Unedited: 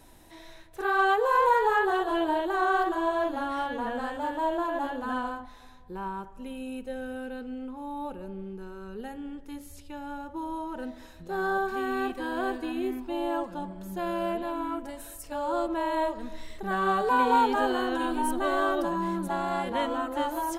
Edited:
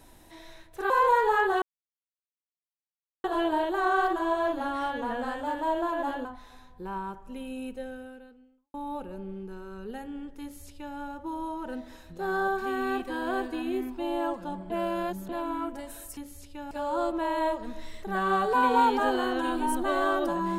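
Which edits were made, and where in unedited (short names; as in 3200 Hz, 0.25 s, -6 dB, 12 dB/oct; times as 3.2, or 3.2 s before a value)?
0.9–1.28 cut
2 insert silence 1.62 s
5.01–5.35 cut
6.82–7.84 fade out quadratic
9.52–10.06 copy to 15.27
13.8–14.39 reverse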